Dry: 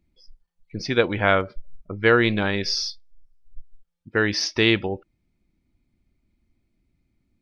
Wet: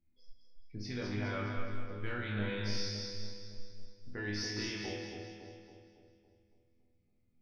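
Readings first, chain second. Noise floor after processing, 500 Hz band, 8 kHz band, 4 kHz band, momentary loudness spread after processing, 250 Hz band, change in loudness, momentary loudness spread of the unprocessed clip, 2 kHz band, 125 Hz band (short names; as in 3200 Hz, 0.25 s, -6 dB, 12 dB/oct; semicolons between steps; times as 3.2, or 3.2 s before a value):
-73 dBFS, -19.5 dB, n/a, -15.0 dB, 16 LU, -14.5 dB, -17.5 dB, 16 LU, -18.0 dB, -10.0 dB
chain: low shelf 230 Hz +5 dB; in parallel at -0.5 dB: compressor, threshold -30 dBFS, peak gain reduction 17.5 dB; on the sum: limiter -10 dBFS, peak gain reduction 8.5 dB; resonator bank E2 major, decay 0.82 s; split-band echo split 810 Hz, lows 0.279 s, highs 0.209 s, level -4 dB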